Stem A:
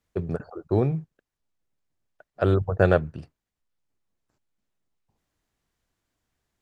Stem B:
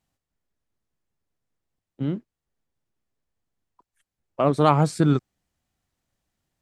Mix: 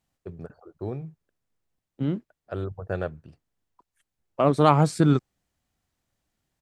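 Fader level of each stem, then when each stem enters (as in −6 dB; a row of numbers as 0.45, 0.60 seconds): −10.5, 0.0 decibels; 0.10, 0.00 seconds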